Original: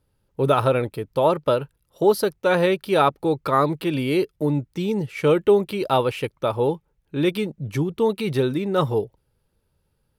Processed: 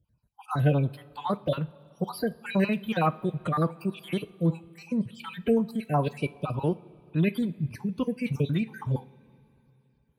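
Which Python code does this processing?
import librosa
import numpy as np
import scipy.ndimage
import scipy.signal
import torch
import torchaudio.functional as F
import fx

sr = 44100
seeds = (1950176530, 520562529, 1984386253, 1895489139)

y = fx.spec_dropout(x, sr, seeds[0], share_pct=51)
y = fx.highpass(y, sr, hz=50.0, slope=6)
y = fx.low_shelf_res(y, sr, hz=250.0, db=8.5, q=1.5)
y = fx.pitch_keep_formants(y, sr, semitones=2.0)
y = fx.rev_double_slope(y, sr, seeds[1], early_s=0.36, late_s=3.1, knee_db=-17, drr_db=13.5)
y = F.gain(torch.from_numpy(y), -6.0).numpy()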